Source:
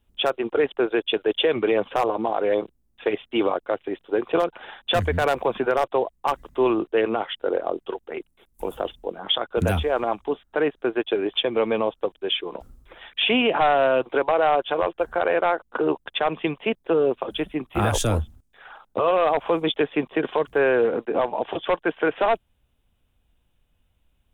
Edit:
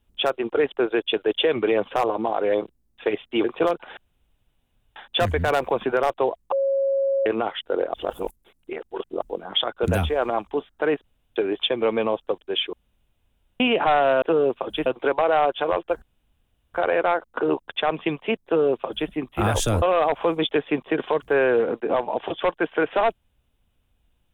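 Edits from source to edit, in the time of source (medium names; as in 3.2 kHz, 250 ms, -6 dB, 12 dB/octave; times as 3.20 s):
3.44–4.17 s: delete
4.70 s: insert room tone 0.99 s
6.26–7.00 s: bleep 547 Hz -18.5 dBFS
7.68–8.96 s: reverse
10.78–11.10 s: room tone
12.47–13.34 s: room tone
15.12 s: insert room tone 0.72 s
16.83–17.47 s: copy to 13.96 s
18.20–19.07 s: delete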